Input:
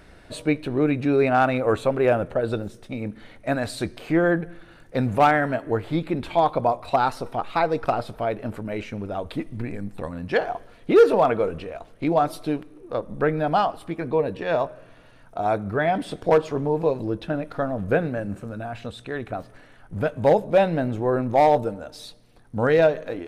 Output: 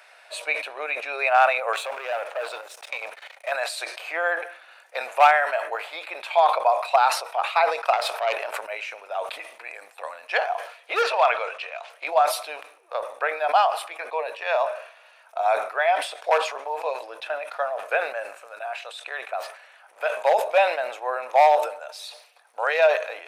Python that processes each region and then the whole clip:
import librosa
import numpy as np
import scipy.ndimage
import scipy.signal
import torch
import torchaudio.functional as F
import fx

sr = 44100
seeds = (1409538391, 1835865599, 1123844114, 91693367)

y = fx.chain(x, sr, fx.level_steps(step_db=15),
    fx.leveller(passes=2), at=(1.73, 3.52))
y = fx.chain(y, sr, fx.self_delay(depth_ms=0.12),
    fx.sustainer(db_per_s=20.0), at=(7.93, 8.62))
y = fx.chain(y, sr, fx.lowpass(hz=4400.0, slope=12),
    fx.tilt_eq(slope=3.0), at=(11.02, 11.9))
y = scipy.signal.sosfilt(scipy.signal.butter(6, 610.0, 'highpass', fs=sr, output='sos'), y)
y = fx.peak_eq(y, sr, hz=2500.0, db=8.0, octaves=0.21)
y = fx.sustainer(y, sr, db_per_s=99.0)
y = y * 10.0 ** (2.5 / 20.0)